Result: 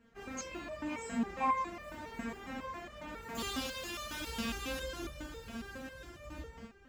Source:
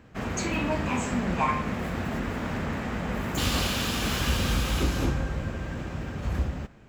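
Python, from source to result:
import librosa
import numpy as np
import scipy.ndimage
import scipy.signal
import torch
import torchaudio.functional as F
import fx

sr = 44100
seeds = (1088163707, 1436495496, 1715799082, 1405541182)

y = x + 10.0 ** (-13.0 / 20.0) * np.pad(x, (int(1197 * sr / 1000.0), 0))[:len(x)]
y = fx.resonator_held(y, sr, hz=7.3, low_hz=230.0, high_hz=600.0)
y = F.gain(torch.from_numpy(y), 3.5).numpy()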